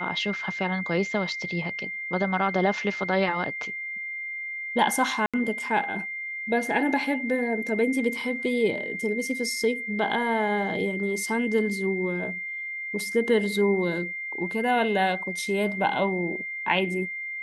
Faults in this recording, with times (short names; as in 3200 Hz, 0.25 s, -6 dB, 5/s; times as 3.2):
tone 2100 Hz -31 dBFS
5.26–5.34 gap 76 ms